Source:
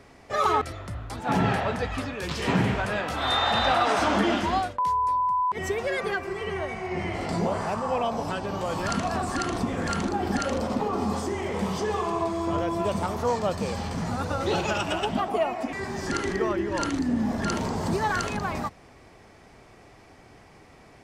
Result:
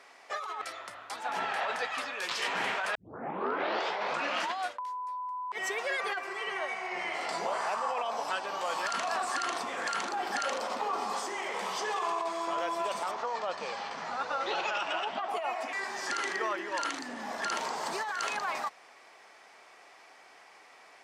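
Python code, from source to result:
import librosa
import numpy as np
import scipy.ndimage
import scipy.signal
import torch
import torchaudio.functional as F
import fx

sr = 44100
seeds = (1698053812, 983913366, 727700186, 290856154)

y = fx.air_absorb(x, sr, metres=120.0, at=(13.11, 15.29))
y = fx.edit(y, sr, fx.tape_start(start_s=2.95, length_s=1.57), tone=tone)
y = scipy.signal.sosfilt(scipy.signal.butter(2, 820.0, 'highpass', fs=sr, output='sos'), y)
y = fx.high_shelf(y, sr, hz=11000.0, db=-7.5)
y = fx.over_compress(y, sr, threshold_db=-32.0, ratio=-1.0)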